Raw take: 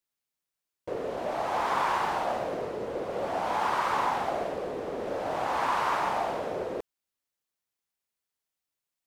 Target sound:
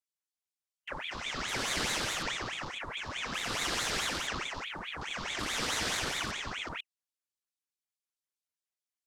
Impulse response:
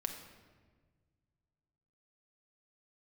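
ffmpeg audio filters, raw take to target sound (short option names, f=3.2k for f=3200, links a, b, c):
-af "equalizer=f=250:t=o:w=1:g=-11,equalizer=f=500:t=o:w=1:g=-4,equalizer=f=1k:t=o:w=1:g=-9,equalizer=f=2k:t=o:w=1:g=-9,equalizer=f=4k:t=o:w=1:g=10,equalizer=f=8k:t=o:w=1:g=8,afwtdn=0.00355,aeval=exprs='val(0)*sin(2*PI*1700*n/s+1700*0.75/4.7*sin(2*PI*4.7*n/s))':c=same,volume=5dB"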